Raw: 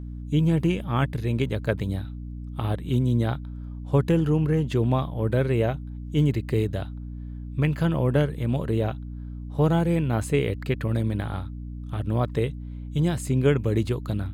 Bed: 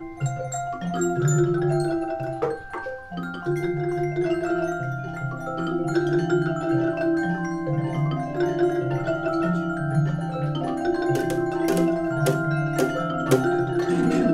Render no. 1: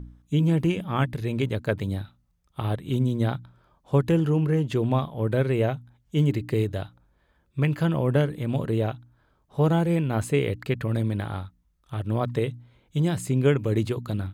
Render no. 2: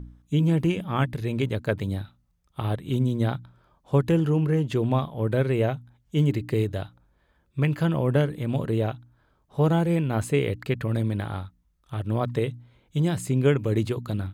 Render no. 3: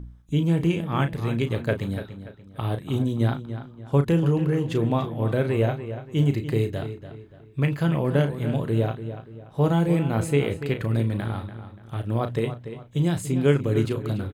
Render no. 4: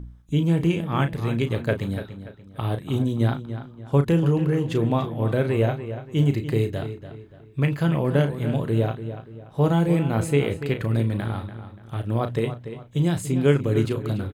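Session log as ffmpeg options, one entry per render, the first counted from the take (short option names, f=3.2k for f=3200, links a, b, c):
-af "bandreject=f=60:t=h:w=4,bandreject=f=120:t=h:w=4,bandreject=f=180:t=h:w=4,bandreject=f=240:t=h:w=4,bandreject=f=300:t=h:w=4"
-af anull
-filter_complex "[0:a]asplit=2[a][b];[b]adelay=35,volume=-9dB[c];[a][c]amix=inputs=2:normalize=0,asplit=2[d][e];[e]adelay=289,lowpass=f=4k:p=1,volume=-11dB,asplit=2[f][g];[g]adelay=289,lowpass=f=4k:p=1,volume=0.38,asplit=2[h][i];[i]adelay=289,lowpass=f=4k:p=1,volume=0.38,asplit=2[j][k];[k]adelay=289,lowpass=f=4k:p=1,volume=0.38[l];[d][f][h][j][l]amix=inputs=5:normalize=0"
-af "volume=1dB"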